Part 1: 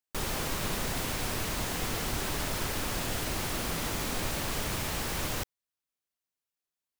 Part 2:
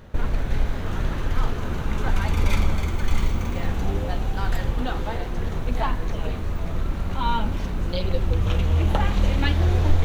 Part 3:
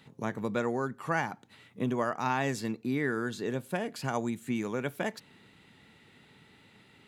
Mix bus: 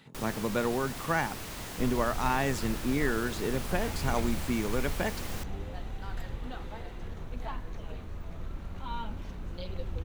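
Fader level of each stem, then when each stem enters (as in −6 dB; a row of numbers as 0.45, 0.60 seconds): −7.5, −13.5, +1.0 decibels; 0.00, 1.65, 0.00 seconds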